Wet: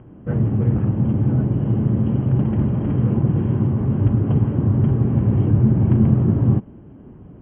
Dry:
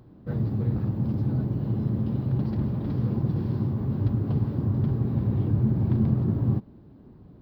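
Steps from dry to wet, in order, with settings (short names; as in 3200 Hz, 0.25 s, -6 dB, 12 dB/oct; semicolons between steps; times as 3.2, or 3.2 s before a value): Chebyshev low-pass 3200 Hz, order 10; gain +8.5 dB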